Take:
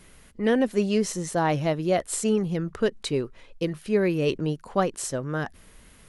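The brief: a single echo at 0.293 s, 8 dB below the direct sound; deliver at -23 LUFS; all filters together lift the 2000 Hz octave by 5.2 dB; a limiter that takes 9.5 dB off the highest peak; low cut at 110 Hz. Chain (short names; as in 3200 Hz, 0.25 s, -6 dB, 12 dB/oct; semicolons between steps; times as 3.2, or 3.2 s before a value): HPF 110 Hz; bell 2000 Hz +6.5 dB; limiter -16.5 dBFS; echo 0.293 s -8 dB; gain +4.5 dB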